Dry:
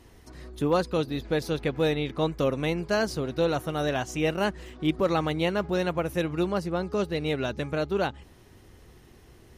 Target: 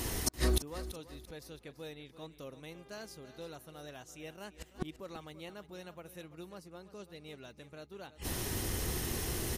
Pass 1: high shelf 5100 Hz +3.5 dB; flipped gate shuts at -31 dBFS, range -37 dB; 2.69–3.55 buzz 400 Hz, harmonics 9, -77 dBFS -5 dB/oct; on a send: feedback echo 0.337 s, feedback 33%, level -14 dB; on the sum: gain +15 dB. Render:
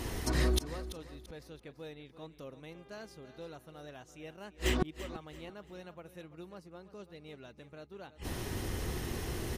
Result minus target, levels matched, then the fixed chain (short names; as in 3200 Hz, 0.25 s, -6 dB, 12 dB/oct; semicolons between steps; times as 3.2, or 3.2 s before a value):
8000 Hz band -6.5 dB
high shelf 5100 Hz +14.5 dB; flipped gate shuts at -31 dBFS, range -37 dB; 2.69–3.55 buzz 400 Hz, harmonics 9, -77 dBFS -5 dB/oct; on a send: feedback echo 0.337 s, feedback 33%, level -14 dB; on the sum: gain +15 dB